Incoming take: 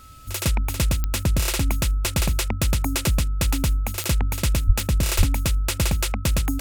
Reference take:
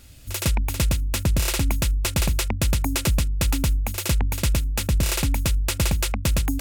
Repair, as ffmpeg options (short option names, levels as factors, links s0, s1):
-filter_complex "[0:a]adeclick=t=4,bandreject=f=1300:w=30,asplit=3[s0][s1][s2];[s0]afade=t=out:st=4.66:d=0.02[s3];[s1]highpass=f=140:w=0.5412,highpass=f=140:w=1.3066,afade=t=in:st=4.66:d=0.02,afade=t=out:st=4.78:d=0.02[s4];[s2]afade=t=in:st=4.78:d=0.02[s5];[s3][s4][s5]amix=inputs=3:normalize=0,asplit=3[s6][s7][s8];[s6]afade=t=out:st=5.17:d=0.02[s9];[s7]highpass=f=140:w=0.5412,highpass=f=140:w=1.3066,afade=t=in:st=5.17:d=0.02,afade=t=out:st=5.29:d=0.02[s10];[s8]afade=t=in:st=5.29:d=0.02[s11];[s9][s10][s11]amix=inputs=3:normalize=0"